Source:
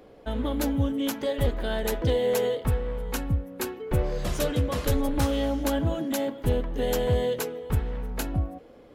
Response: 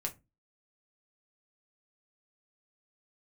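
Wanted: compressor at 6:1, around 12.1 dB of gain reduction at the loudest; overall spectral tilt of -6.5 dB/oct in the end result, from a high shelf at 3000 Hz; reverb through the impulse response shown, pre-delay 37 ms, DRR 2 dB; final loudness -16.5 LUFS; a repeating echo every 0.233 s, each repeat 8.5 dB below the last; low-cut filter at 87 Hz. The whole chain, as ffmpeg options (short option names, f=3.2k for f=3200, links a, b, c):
-filter_complex "[0:a]highpass=87,highshelf=f=3k:g=-8,acompressor=threshold=-35dB:ratio=6,aecho=1:1:233|466|699|932:0.376|0.143|0.0543|0.0206,asplit=2[a][b];[1:a]atrim=start_sample=2205,adelay=37[c];[b][c]afir=irnorm=-1:irlink=0,volume=-2.5dB[d];[a][d]amix=inputs=2:normalize=0,volume=18dB"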